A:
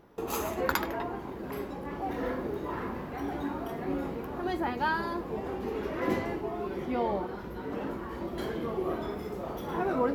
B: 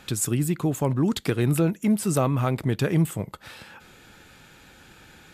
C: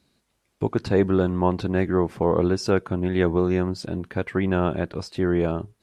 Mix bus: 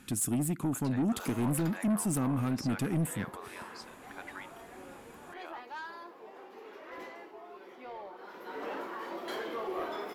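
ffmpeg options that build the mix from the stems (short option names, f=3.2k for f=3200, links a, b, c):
-filter_complex "[0:a]highpass=310,asplit=2[a][b];[b]highpass=f=720:p=1,volume=18dB,asoftclip=type=tanh:threshold=-11dB[c];[a][c]amix=inputs=2:normalize=0,lowpass=f=8k:p=1,volume=-6dB,adelay=900,volume=-9dB,afade=t=in:st=8.14:d=0.43:silence=0.251189[d];[1:a]equalizer=f=250:t=o:w=0.67:g=11,equalizer=f=630:t=o:w=0.67:g=-9,equalizer=f=4k:t=o:w=0.67:g=-6,equalizer=f=10k:t=o:w=0.67:g=9,volume=-7.5dB[e];[2:a]highpass=f=810:w=0.5412,highpass=f=810:w=1.3066,volume=-11dB,asplit=3[f][g][h];[f]atrim=end=4.51,asetpts=PTS-STARTPTS,afade=t=out:st=4.506:d=0.004:c=hsin[i];[g]atrim=start=4.51:end=5.32,asetpts=PTS-STARTPTS,volume=0[j];[h]atrim=start=5.32,asetpts=PTS-STARTPTS,afade=t=in:d=0.004:c=hsin[k];[i][j][k]concat=n=3:v=0:a=1[l];[d][e][l]amix=inputs=3:normalize=0,asoftclip=type=tanh:threshold=-25dB"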